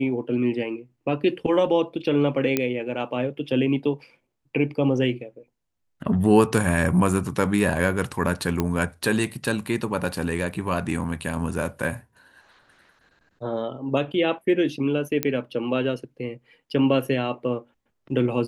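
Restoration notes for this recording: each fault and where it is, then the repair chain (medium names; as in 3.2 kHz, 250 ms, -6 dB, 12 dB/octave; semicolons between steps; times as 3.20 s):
2.57 s: pop -7 dBFS
8.60 s: pop -10 dBFS
15.23 s: pop -6 dBFS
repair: de-click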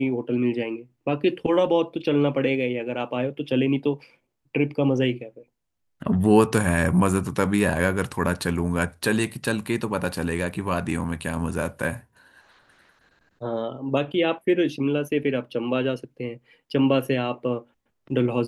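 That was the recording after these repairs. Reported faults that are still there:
nothing left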